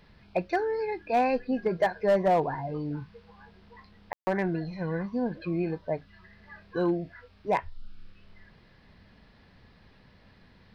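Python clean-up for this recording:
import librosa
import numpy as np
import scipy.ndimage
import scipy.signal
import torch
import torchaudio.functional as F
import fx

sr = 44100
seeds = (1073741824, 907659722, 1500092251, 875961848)

y = fx.fix_declip(x, sr, threshold_db=-17.5)
y = fx.fix_ambience(y, sr, seeds[0], print_start_s=9.92, print_end_s=10.42, start_s=4.13, end_s=4.27)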